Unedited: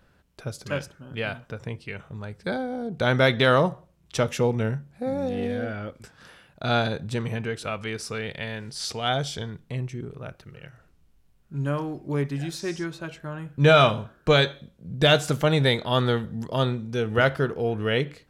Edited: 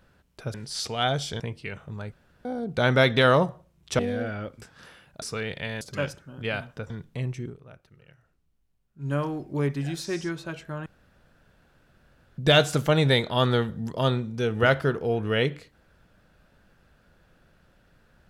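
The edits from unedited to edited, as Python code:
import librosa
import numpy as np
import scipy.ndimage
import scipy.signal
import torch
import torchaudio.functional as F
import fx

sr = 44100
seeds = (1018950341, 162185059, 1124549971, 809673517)

y = fx.edit(x, sr, fx.swap(start_s=0.54, length_s=1.09, other_s=8.59, other_length_s=0.86),
    fx.room_tone_fill(start_s=2.35, length_s=0.33),
    fx.cut(start_s=4.22, length_s=1.19),
    fx.cut(start_s=6.64, length_s=1.36),
    fx.fade_down_up(start_s=9.99, length_s=1.69, db=-11.0, fade_s=0.14),
    fx.room_tone_fill(start_s=13.41, length_s=1.52), tone=tone)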